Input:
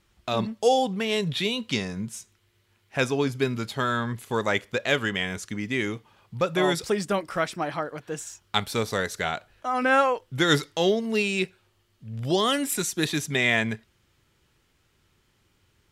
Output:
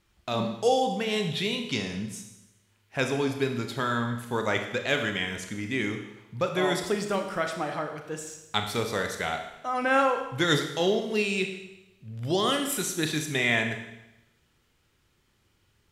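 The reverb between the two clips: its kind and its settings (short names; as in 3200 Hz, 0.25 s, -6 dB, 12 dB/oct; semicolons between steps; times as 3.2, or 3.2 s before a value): Schroeder reverb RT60 0.94 s, combs from 26 ms, DRR 5 dB; gain -3 dB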